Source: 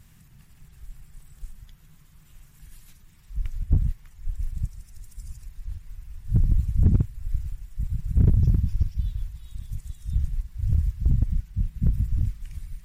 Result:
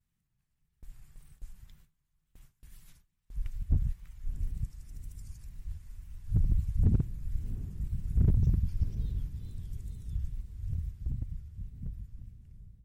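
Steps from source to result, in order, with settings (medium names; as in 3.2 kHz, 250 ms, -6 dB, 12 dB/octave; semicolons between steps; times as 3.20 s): fade out at the end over 3.98 s; on a send: echo that smears into a reverb 697 ms, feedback 50%, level -13 dB; on the sum: wow and flutter 110 cents; gate with hold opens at -38 dBFS; trim -6.5 dB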